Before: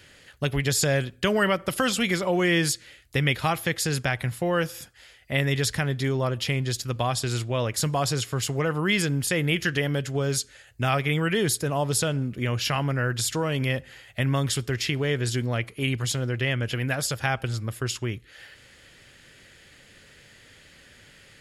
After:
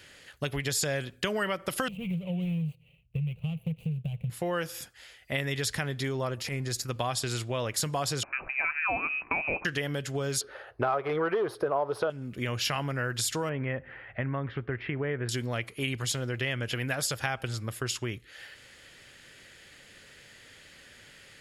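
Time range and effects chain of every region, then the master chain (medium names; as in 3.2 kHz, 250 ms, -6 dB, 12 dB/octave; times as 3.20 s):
1.88–4.30 s: median filter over 25 samples + FFT filter 100 Hz 0 dB, 160 Hz +12 dB, 310 Hz -24 dB, 470 Hz -8 dB, 990 Hz -24 dB, 1.7 kHz -24 dB, 2.7 kHz +3 dB, 5.1 kHz -26 dB, 11 kHz -9 dB
6.35–6.89 s: peaking EQ 3.2 kHz -11 dB 0.48 oct + transient shaper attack -11 dB, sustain +2 dB
8.23–9.65 s: high-pass 240 Hz 24 dB/octave + frequency inversion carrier 2.8 kHz
10.41–12.10 s: overload inside the chain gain 19.5 dB + boxcar filter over 6 samples + high-order bell 700 Hz +16 dB 2.4 oct
13.49–15.29 s: inverse Chebyshev low-pass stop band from 8.2 kHz, stop band 70 dB + upward compressor, threshold -37 dBFS
whole clip: compression, threshold -25 dBFS; bass shelf 270 Hz -5.5 dB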